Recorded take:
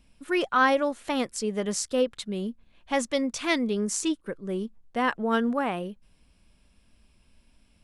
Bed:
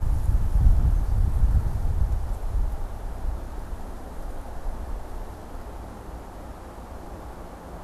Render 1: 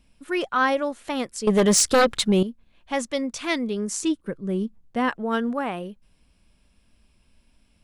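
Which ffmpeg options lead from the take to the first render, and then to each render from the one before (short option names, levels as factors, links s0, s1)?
-filter_complex "[0:a]asettb=1/sr,asplit=3[s0][s1][s2];[s0]atrim=end=1.474[s3];[s1]atrim=start=1.47:end=2.43,asetpts=PTS-STARTPTS,afade=t=in:d=0.004:c=qsin,afade=t=out:st=0.956:d=0.004:c=qsin,aeval=exprs='0.237*sin(PI/2*3.16*val(0)/0.237)':c=same[s4];[s2]atrim=start=2.426[s5];[s3][s4]acrossfade=d=0.004:c1=hsin:c2=qsin[s6];[s6][s5]acrossfade=d=0.004:c1=qsin:c2=hsin,asettb=1/sr,asplit=3[s7][s8][s9];[s7]atrim=end=4.034[s10];[s8]atrim=start=4.03:end=5.09,asetpts=PTS-STARTPTS,afade=t=in:d=0.004:c=qsin,afade=t=out:st=1.056:d=0.004:c=qsin,equalizer=f=130:w=0.58:g=8.5[s11];[s9]atrim=start=5.086[s12];[s10][s11]acrossfade=d=0.004:c1=hsin:c2=qsin[s13];[s13][s12]acrossfade=d=0.004:c1=qsin:c2=hsin"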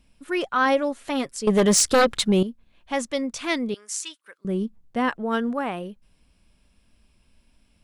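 -filter_complex "[0:a]asettb=1/sr,asplit=3[s0][s1][s2];[s0]atrim=end=0.654[s3];[s1]atrim=start=0.65:end=1.36,asetpts=PTS-STARTPTS,afade=t=in:d=0.004:c=qsin,afade=t=out:st=0.706:d=0.004:c=qsin,aecho=1:1:7.3:0.42,atrim=end_sample=31311[s4];[s2]atrim=start=1.356[s5];[s3][s4]acrossfade=d=0.004:c1=hsin:c2=qsin[s6];[s6][s5]acrossfade=d=0.004:c1=qsin:c2=hsin,asettb=1/sr,asplit=3[s7][s8][s9];[s7]atrim=end=3.744[s10];[s8]atrim=start=3.74:end=4.45,asetpts=PTS-STARTPTS,afade=t=in:d=0.004:c=qsin,afade=t=out:st=0.706:d=0.004:c=qsin,highpass=1500[s11];[s9]atrim=start=4.446[s12];[s10][s11]acrossfade=d=0.004:c1=hsin:c2=qsin[s13];[s13][s12]acrossfade=d=0.004:c1=qsin:c2=hsin"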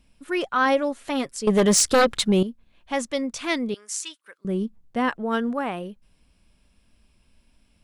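-af anull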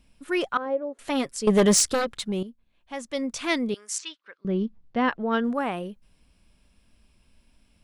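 -filter_complex "[0:a]asettb=1/sr,asplit=3[s0][s1][s2];[s0]atrim=end=0.574[s3];[s1]atrim=start=0.57:end=0.99,asetpts=PTS-STARTPTS,afade=t=in:d=0.004:c=qsin,afade=t=out:st=0.416:d=0.004:c=qsin,bandpass=f=440:t=q:w=3.1[s4];[s2]atrim=start=0.986[s5];[s3][s4]acrossfade=d=0.004:c1=hsin:c2=qsin[s6];[s6][s5]acrossfade=d=0.004:c1=qsin:c2=hsin,asettb=1/sr,asplit=3[s7][s8][s9];[s7]atrim=end=3.984[s10];[s8]atrim=start=3.98:end=5.44,asetpts=PTS-STARTPTS,afade=t=in:d=0.004:c=qsin,afade=t=out:st=1.456:d=0.004:c=qsin,lowpass=f=5000:w=0.5412,lowpass=f=5000:w=1.3066[s11];[s9]atrim=start=5.436[s12];[s10][s11]acrossfade=d=0.004:c1=hsin:c2=qsin[s13];[s13][s12]acrossfade=d=0.004:c1=qsin:c2=hsin,asplit=3[s14][s15][s16];[s14]atrim=end=2,asetpts=PTS-STARTPTS,afade=t=out:st=1.63:d=0.37:c=qsin:silence=0.354813[s17];[s15]atrim=start=2:end=3.03,asetpts=PTS-STARTPTS,volume=0.355[s18];[s16]atrim=start=3.03,asetpts=PTS-STARTPTS,afade=t=in:d=0.37:c=qsin:silence=0.354813[s19];[s17][s18][s19]concat=n=3:v=0:a=1"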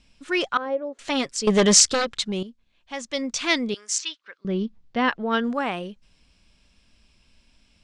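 -af "lowpass=f=7100:w=0.5412,lowpass=f=7100:w=1.3066,highshelf=f=2100:g=9.5"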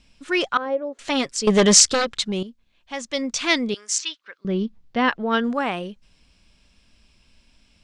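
-af "volume=1.26"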